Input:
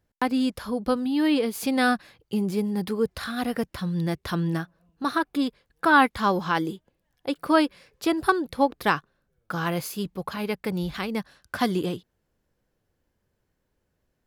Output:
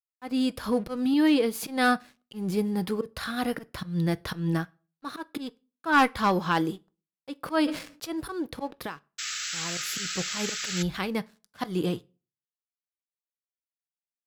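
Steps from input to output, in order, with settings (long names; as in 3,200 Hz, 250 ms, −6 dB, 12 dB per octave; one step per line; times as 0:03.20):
0:00.63–0:01.14: leveller curve on the samples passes 1
0:08.74–0:09.78: downward compressor 6 to 1, threshold −34 dBFS, peak gain reduction 16.5 dB
volume swells 172 ms
asymmetric clip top −16.5 dBFS
0:09.18–0:10.83: sound drawn into the spectrogram noise 1,200–7,900 Hz −33 dBFS
dead-zone distortion −53.5 dBFS
convolution reverb RT60 0.35 s, pre-delay 6 ms, DRR 14 dB
0:07.44–0:08.10: level that may fall only so fast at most 110 dB per second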